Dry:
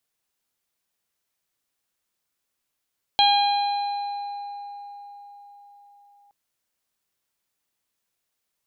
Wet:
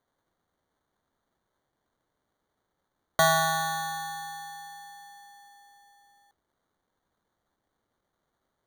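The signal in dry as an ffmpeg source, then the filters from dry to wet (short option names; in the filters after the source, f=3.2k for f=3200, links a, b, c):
-f lavfi -i "aevalsrc='0.158*pow(10,-3*t/4.84)*sin(2*PI*812*t)+0.0178*pow(10,-3*t/2.31)*sin(2*PI*1624*t)+0.0398*pow(10,-3*t/2.4)*sin(2*PI*2436*t)+0.119*pow(10,-3*t/1.21)*sin(2*PI*3248*t)+0.1*pow(10,-3*t/2.43)*sin(2*PI*4060*t)':d=3.12:s=44100"
-af "equalizer=f=950:t=o:w=1.4:g=-7,acrusher=samples=17:mix=1:aa=0.000001"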